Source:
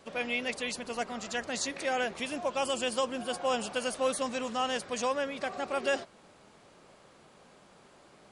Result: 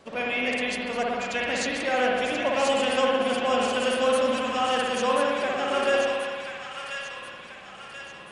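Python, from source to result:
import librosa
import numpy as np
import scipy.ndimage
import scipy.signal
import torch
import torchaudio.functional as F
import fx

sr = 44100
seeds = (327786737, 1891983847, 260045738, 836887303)

p1 = fx.high_shelf(x, sr, hz=5400.0, db=-6.0)
p2 = p1 + fx.echo_wet_highpass(p1, sr, ms=1034, feedback_pct=48, hz=1500.0, wet_db=-4, dry=0)
p3 = fx.rev_spring(p2, sr, rt60_s=1.7, pass_ms=(56,), chirp_ms=55, drr_db=-2.5)
y = p3 * 10.0 ** (3.5 / 20.0)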